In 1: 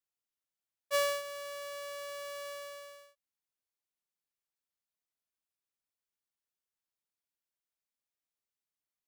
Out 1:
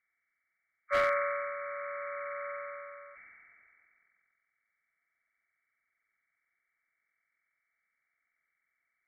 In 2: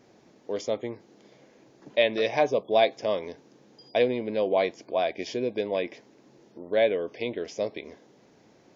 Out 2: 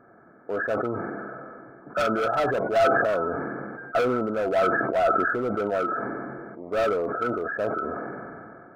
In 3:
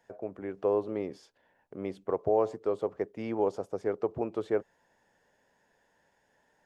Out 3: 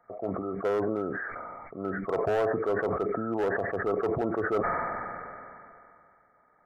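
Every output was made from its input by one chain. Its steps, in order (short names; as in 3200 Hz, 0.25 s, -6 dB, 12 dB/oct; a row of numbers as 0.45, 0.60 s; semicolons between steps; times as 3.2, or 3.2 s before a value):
nonlinear frequency compression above 1100 Hz 4:1; hard clip -25 dBFS; small resonant body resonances 690/1300 Hz, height 9 dB; sustainer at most 23 dB/s; gain +1.5 dB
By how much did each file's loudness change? +3.5, +2.0, +2.0 LU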